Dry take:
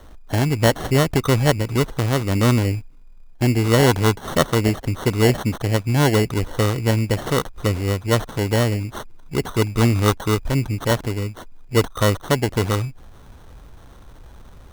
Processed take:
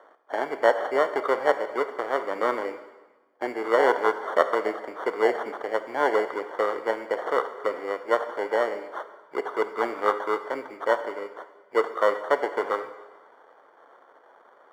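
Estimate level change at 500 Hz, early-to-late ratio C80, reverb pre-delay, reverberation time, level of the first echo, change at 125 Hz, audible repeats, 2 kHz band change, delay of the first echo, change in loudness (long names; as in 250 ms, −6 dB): −2.0 dB, 13.0 dB, 7 ms, 1.2 s, no echo audible, below −40 dB, no echo audible, −3.0 dB, no echo audible, −6.0 dB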